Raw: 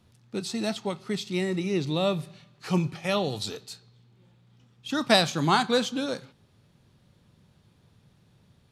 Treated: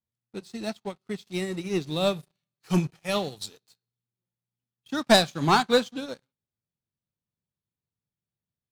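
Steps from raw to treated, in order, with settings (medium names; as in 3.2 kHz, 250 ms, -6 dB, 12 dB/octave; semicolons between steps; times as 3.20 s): 1.28–3.68 s: treble shelf 6.7 kHz +10 dB; waveshaping leveller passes 3; upward expansion 2.5:1, over -24 dBFS; trim -4 dB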